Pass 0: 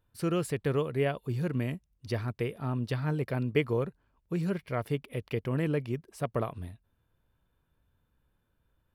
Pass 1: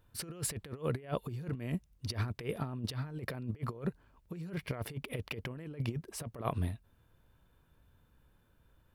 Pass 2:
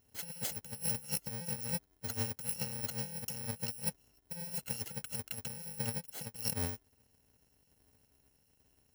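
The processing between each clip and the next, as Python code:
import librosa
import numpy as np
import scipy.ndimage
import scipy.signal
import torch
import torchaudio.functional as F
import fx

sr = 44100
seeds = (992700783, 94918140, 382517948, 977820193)

y1 = fx.over_compress(x, sr, threshold_db=-36.0, ratio=-0.5)
y2 = fx.bit_reversed(y1, sr, seeds[0], block=128)
y2 = fx.notch_comb(y2, sr, f0_hz=1200.0)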